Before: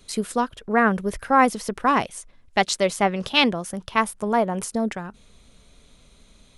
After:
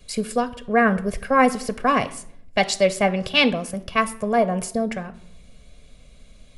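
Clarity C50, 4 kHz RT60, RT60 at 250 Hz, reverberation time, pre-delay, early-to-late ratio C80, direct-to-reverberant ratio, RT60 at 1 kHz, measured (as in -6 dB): 17.5 dB, 0.45 s, 0.95 s, 0.70 s, 5 ms, 20.5 dB, 11.0 dB, 0.60 s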